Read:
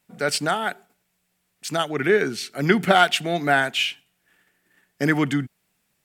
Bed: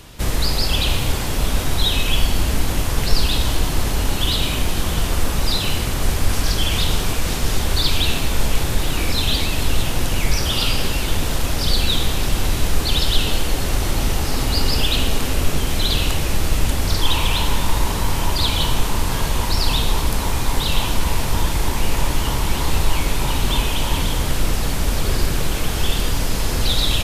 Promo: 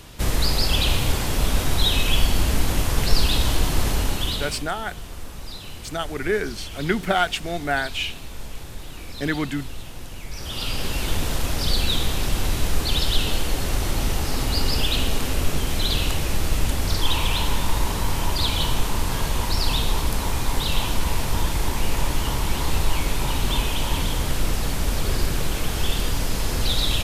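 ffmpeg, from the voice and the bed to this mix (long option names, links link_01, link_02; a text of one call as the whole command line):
ffmpeg -i stem1.wav -i stem2.wav -filter_complex "[0:a]adelay=4200,volume=-4.5dB[link_01];[1:a]volume=11.5dB,afade=type=out:start_time=3.9:duration=0.79:silence=0.177828,afade=type=in:start_time=10.3:duration=0.77:silence=0.223872[link_02];[link_01][link_02]amix=inputs=2:normalize=0" out.wav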